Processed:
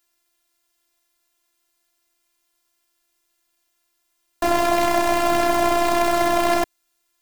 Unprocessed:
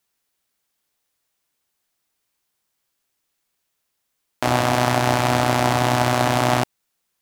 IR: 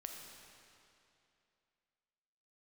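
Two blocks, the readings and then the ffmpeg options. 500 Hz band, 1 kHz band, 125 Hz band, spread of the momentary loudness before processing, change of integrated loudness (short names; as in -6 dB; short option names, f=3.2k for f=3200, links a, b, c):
+2.5 dB, 0.0 dB, -17.5 dB, 4 LU, -0.5 dB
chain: -af "aeval=exprs='0.891*sin(PI/2*2.82*val(0)/0.891)':c=same,afftfilt=real='hypot(re,im)*cos(PI*b)':imag='0':win_size=512:overlap=0.75,volume=-5.5dB"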